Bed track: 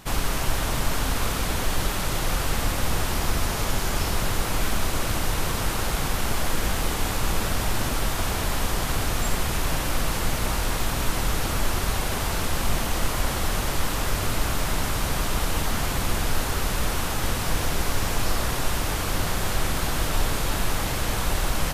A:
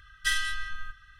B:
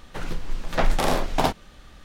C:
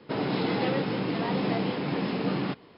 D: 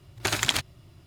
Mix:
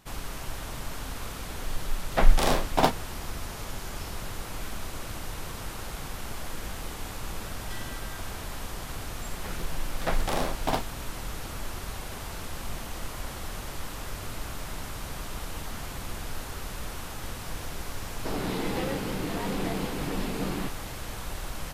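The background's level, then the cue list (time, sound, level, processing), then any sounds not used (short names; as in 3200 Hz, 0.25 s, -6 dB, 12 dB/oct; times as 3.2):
bed track -11.5 dB
1.39 add B -3 dB + three-band expander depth 100%
7.46 add A -5 dB + compressor, threshold -36 dBFS
9.29 add B -6 dB
18.15 add C -4 dB
not used: D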